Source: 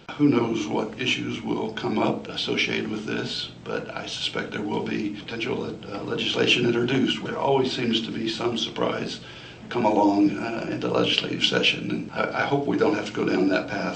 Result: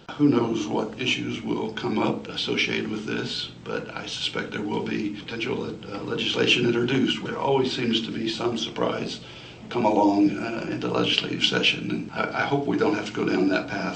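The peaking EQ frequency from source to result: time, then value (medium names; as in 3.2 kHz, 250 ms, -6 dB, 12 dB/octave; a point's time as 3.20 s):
peaking EQ -8 dB 0.25 oct
0.90 s 2.3 kHz
1.61 s 660 Hz
8.07 s 660 Hz
8.68 s 4.5 kHz
8.98 s 1.6 kHz
10.00 s 1.6 kHz
10.80 s 540 Hz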